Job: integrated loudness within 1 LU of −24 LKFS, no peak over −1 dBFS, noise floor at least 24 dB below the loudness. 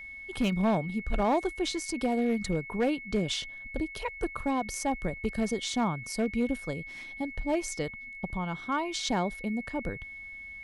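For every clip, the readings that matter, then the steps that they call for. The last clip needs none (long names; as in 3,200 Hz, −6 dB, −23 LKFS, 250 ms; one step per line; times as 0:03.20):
share of clipped samples 0.6%; peaks flattened at −20.5 dBFS; interfering tone 2,200 Hz; level of the tone −41 dBFS; integrated loudness −31.5 LKFS; sample peak −20.5 dBFS; target loudness −24.0 LKFS
→ clipped peaks rebuilt −20.5 dBFS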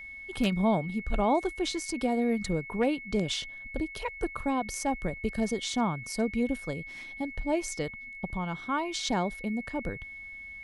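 share of clipped samples 0.0%; interfering tone 2,200 Hz; level of the tone −41 dBFS
→ notch filter 2,200 Hz, Q 30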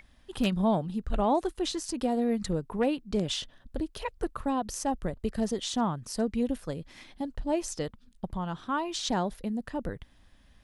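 interfering tone none found; integrated loudness −31.5 LKFS; sample peak −12.5 dBFS; target loudness −24.0 LKFS
→ level +7.5 dB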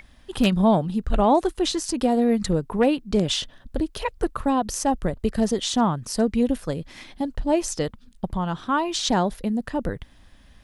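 integrated loudness −24.0 LKFS; sample peak −5.0 dBFS; background noise floor −52 dBFS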